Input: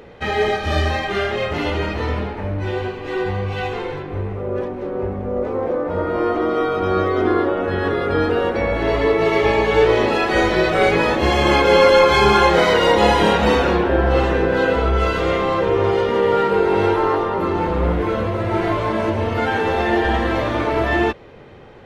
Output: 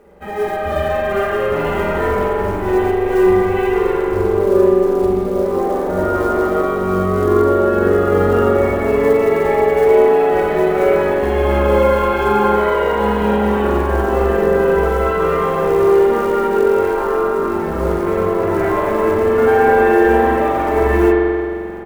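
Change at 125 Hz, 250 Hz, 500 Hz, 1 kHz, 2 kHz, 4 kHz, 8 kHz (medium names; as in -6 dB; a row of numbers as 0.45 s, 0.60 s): 0.0 dB, +3.5 dB, +4.5 dB, +1.5 dB, -1.5 dB, -10.5 dB, no reading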